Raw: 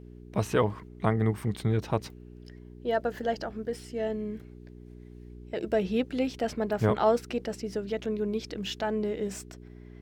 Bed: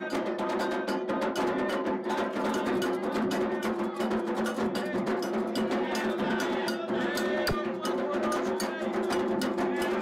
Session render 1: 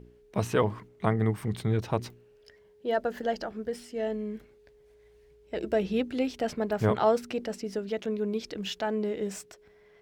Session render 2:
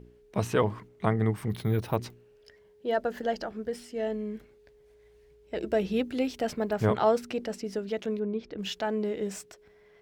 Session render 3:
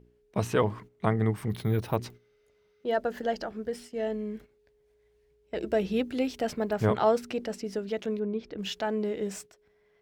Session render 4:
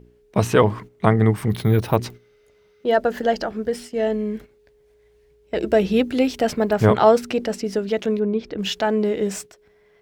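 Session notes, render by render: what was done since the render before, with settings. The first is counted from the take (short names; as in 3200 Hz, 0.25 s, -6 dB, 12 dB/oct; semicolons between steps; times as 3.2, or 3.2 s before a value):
de-hum 60 Hz, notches 6
1.5–1.96 careless resampling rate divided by 3×, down filtered, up hold; 5.74–6.7 high shelf 11000 Hz +8 dB; 8.19–8.59 tape spacing loss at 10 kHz 29 dB
2.17–2.81 spectral repair 1200–6500 Hz before; gate -46 dBFS, range -8 dB
gain +9.5 dB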